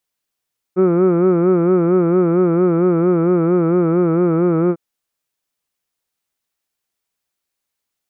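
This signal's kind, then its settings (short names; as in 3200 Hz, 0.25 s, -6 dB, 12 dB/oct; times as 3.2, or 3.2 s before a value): formant vowel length 4.00 s, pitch 179 Hz, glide -1 st, vibrato 4.4 Hz, vibrato depth 0.95 st, F1 400 Hz, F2 1300 Hz, F3 2300 Hz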